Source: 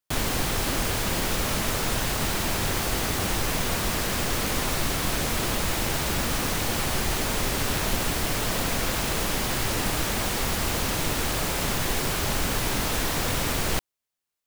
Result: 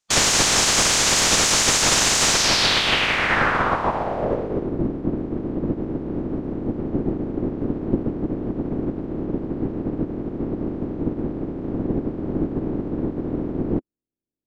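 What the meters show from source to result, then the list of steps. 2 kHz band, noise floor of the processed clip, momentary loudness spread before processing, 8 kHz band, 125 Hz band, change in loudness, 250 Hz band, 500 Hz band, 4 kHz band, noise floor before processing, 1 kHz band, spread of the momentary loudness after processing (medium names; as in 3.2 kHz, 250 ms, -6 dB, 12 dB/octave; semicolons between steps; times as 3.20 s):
+5.0 dB, -76 dBFS, 0 LU, +7.0 dB, +1.0 dB, +4.5 dB, +7.5 dB, +4.5 dB, +6.5 dB, -85 dBFS, +3.5 dB, 12 LU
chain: spectral peaks clipped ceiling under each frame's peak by 19 dB; low-pass sweep 6.8 kHz -> 310 Hz, 2.31–4.76 s; trim +6 dB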